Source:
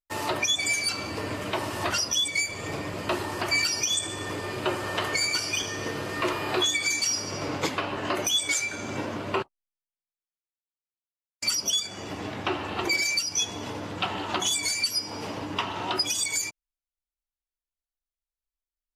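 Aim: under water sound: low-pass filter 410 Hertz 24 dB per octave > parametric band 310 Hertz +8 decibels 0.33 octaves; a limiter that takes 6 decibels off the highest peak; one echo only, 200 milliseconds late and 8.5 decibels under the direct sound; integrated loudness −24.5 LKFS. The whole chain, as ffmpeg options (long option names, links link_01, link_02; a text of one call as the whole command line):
ffmpeg -i in.wav -af "alimiter=limit=-21dB:level=0:latency=1,lowpass=frequency=410:width=0.5412,lowpass=frequency=410:width=1.3066,equalizer=frequency=310:width_type=o:width=0.33:gain=8,aecho=1:1:200:0.376,volume=10.5dB" out.wav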